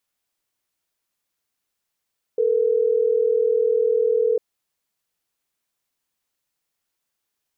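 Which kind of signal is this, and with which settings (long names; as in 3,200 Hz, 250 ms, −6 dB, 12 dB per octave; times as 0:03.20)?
call progress tone ringback tone, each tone −19 dBFS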